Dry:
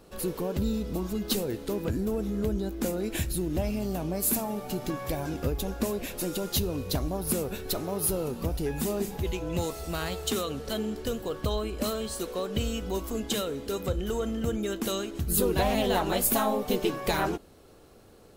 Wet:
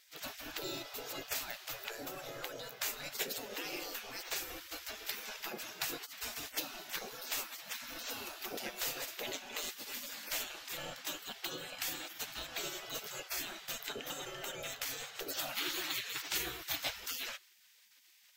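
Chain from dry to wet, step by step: spectral gate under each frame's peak -25 dB weak; fifteen-band EQ 100 Hz -7 dB, 400 Hz +8 dB, 1000 Hz -6 dB, 10000 Hz -11 dB; in parallel at -8.5 dB: crossover distortion -36.5 dBFS; on the sum: gain +6 dB

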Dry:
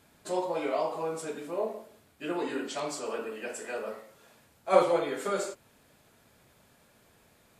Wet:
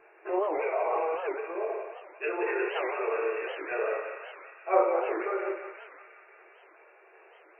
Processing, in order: treble ducked by the level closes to 1600 Hz, closed at -25 dBFS; FFT band-pass 330–2800 Hz; dynamic EQ 2200 Hz, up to +4 dB, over -48 dBFS, Q 1.4; in parallel at -2.5 dB: negative-ratio compressor -38 dBFS, ratio -0.5; on the sum: random-step tremolo, depth 55%; thinning echo 0.178 s, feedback 78%, high-pass 870 Hz, level -6 dB; on a send at -3 dB: reverb RT60 0.35 s, pre-delay 3 ms; on the sum: record warp 78 rpm, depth 250 cents

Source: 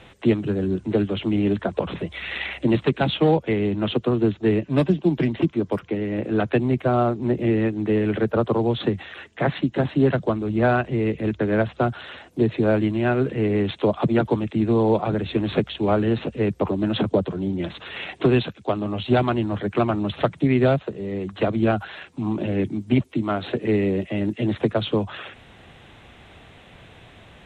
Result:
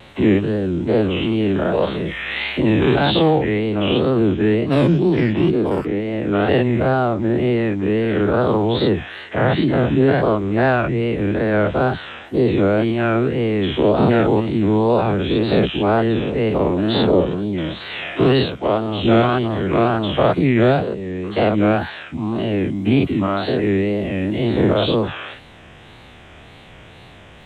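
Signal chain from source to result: spectral dilation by 0.12 s; wow and flutter 130 cents

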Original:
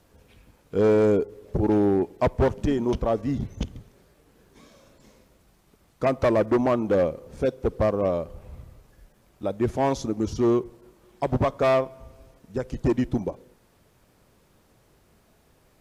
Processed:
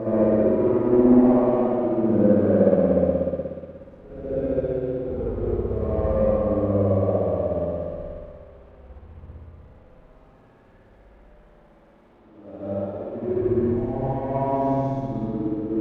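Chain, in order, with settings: tilt shelf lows +5.5 dB; notches 60/120 Hz; Paulstretch 4.1×, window 0.25 s, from 6.36; overdrive pedal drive 32 dB, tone 1000 Hz, clips at -42 dBFS; reverb RT60 2.3 s, pre-delay 60 ms, DRR -6.5 dB; upward expander 1.5:1, over -35 dBFS; gain +1 dB

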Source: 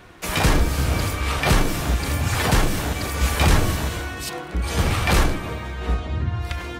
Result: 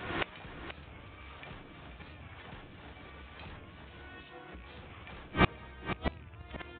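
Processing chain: rattling part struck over -20 dBFS, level -23 dBFS; recorder AGC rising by 58 dB/s; HPF 82 Hz 6 dB/oct; high shelf 3000 Hz +8 dB; flipped gate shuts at -12 dBFS, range -32 dB; air absorption 120 m; on a send: echo 0.482 s -11 dB; on the sum: downsampling 8000 Hz; record warp 45 rpm, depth 100 cents; gain +3 dB

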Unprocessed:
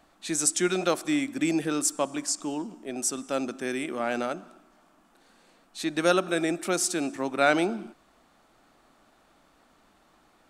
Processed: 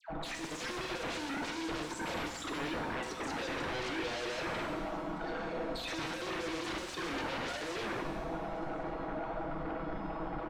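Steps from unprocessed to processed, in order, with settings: formant sharpening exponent 3; notch 1200 Hz, Q 6.1; comb 6.2 ms, depth 90%; dispersion lows, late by 99 ms, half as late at 1400 Hz; soft clip -29 dBFS, distortion -5 dB; limiter -41.5 dBFS, peak gain reduction 12.5 dB; sine folder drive 12 dB, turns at -41 dBFS; air absorption 100 m; echo 1.076 s -23 dB; shimmer reverb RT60 1.3 s, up +7 st, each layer -8 dB, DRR 3.5 dB; gain +6 dB

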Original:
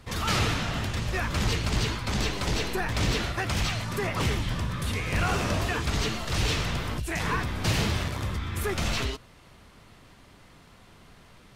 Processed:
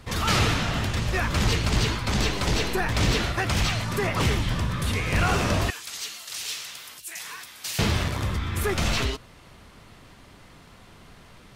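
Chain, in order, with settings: 5.7–7.79 differentiator; gain +3.5 dB

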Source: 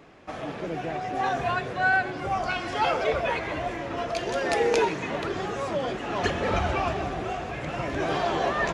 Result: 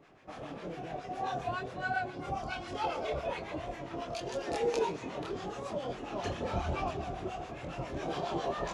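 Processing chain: dynamic EQ 1800 Hz, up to -8 dB, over -44 dBFS, Q 1.5; chorus voices 2, 1.1 Hz, delay 26 ms, depth 3.8 ms; harmonic tremolo 7.3 Hz, depth 70%, crossover 870 Hz; gain -1.5 dB

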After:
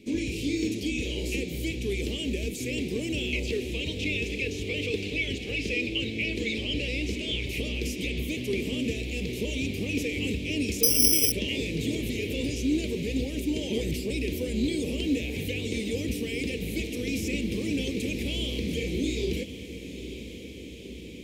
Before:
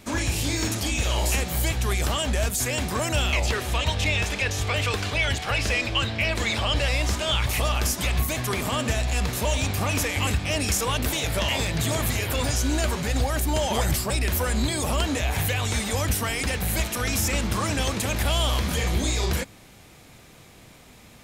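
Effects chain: EQ curve 110 Hz 0 dB, 280 Hz +13 dB, 460 Hz +12 dB, 670 Hz -13 dB, 1400 Hz -27 dB, 2300 Hz +7 dB, 9900 Hz -6 dB; diffused feedback echo 0.949 s, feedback 70%, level -12 dB; 10.83–11.32 careless resampling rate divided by 8×, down filtered, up zero stuff; gain -10 dB

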